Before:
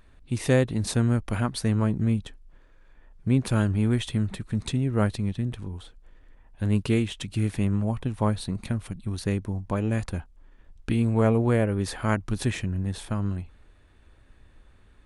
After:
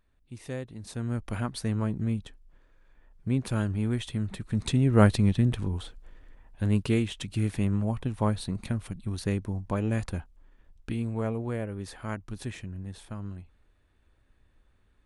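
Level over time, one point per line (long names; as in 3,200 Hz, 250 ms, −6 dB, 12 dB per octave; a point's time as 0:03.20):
0:00.83 −15 dB
0:01.23 −5 dB
0:04.19 −5 dB
0:05.04 +5 dB
0:05.76 +5 dB
0:06.83 −2 dB
0:10.15 −2 dB
0:11.37 −10 dB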